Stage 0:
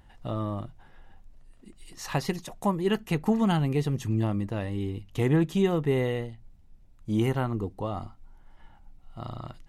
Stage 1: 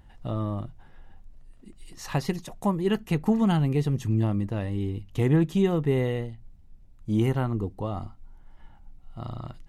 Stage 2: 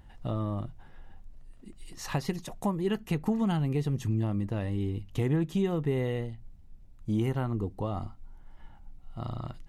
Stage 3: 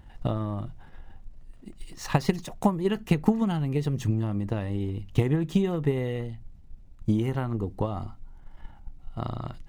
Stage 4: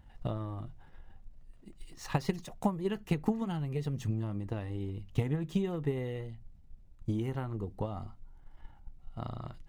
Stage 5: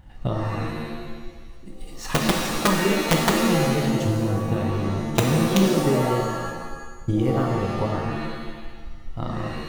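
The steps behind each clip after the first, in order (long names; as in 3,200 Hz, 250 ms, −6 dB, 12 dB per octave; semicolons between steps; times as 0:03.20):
low-shelf EQ 310 Hz +5 dB; level −1.5 dB
downward compressor 2 to 1, threshold −28 dBFS, peak gain reduction 7 dB
running median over 3 samples; transient designer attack +9 dB, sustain +5 dB
flanger 0.76 Hz, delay 1.3 ms, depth 1.4 ms, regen −77%; level −3 dB
wrap-around overflow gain 19.5 dB; reverb with rising layers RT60 1.2 s, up +7 semitones, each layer −2 dB, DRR 1.5 dB; level +8.5 dB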